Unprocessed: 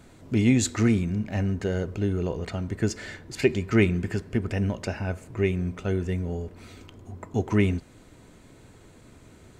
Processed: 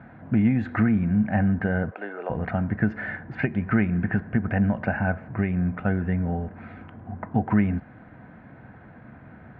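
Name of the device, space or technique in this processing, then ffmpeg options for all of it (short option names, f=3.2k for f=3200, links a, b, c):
bass amplifier: -filter_complex "[0:a]asplit=3[a][b][c];[a]afade=t=out:st=1.89:d=0.02[d];[b]highpass=f=430:w=0.5412,highpass=f=430:w=1.3066,afade=t=in:st=1.89:d=0.02,afade=t=out:st=2.29:d=0.02[e];[c]afade=t=in:st=2.29:d=0.02[f];[d][e][f]amix=inputs=3:normalize=0,acompressor=threshold=-24dB:ratio=6,highpass=66,equalizer=f=140:t=q:w=4:g=5,equalizer=f=210:t=q:w=4:g=7,equalizer=f=390:t=q:w=4:g=-9,equalizer=f=750:t=q:w=4:g=9,equalizer=f=1.6k:t=q:w=4:g=10,lowpass=f=2.1k:w=0.5412,lowpass=f=2.1k:w=1.3066,volume=3.5dB"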